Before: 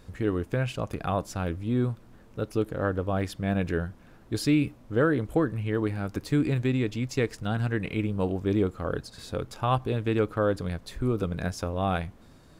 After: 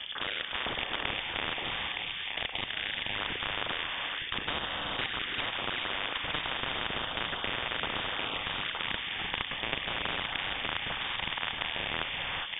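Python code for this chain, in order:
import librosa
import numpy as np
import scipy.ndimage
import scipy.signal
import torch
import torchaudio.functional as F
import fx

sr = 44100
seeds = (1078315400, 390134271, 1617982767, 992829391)

p1 = fx.local_reverse(x, sr, ms=30.0)
p2 = fx.level_steps(p1, sr, step_db=11)
p3 = p2 + fx.echo_single(p2, sr, ms=917, db=-15.5, dry=0)
p4 = fx.rev_gated(p3, sr, seeds[0], gate_ms=450, shape='rising', drr_db=8.5)
p5 = fx.freq_invert(p4, sr, carrier_hz=3400)
y = fx.spectral_comp(p5, sr, ratio=10.0)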